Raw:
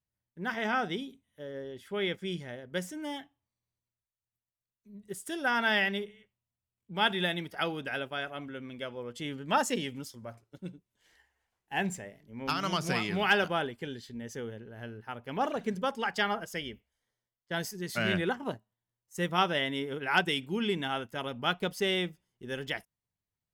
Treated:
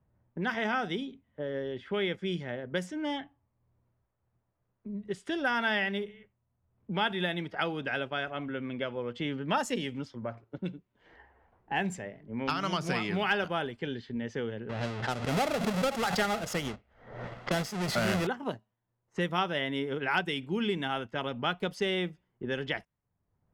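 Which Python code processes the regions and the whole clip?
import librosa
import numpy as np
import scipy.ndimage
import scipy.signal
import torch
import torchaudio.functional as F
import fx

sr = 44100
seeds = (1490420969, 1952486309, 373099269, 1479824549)

y = fx.chain(x, sr, fx.halfwave_hold(),
    fx.comb(ms=1.5, depth=0.3),
    fx.pre_swell(db_per_s=68.0), at=(14.69, 18.27))
y = fx.env_lowpass(y, sr, base_hz=980.0, full_db=-28.5)
y = fx.high_shelf(y, sr, hz=6600.0, db=-10.0)
y = fx.band_squash(y, sr, depth_pct=70)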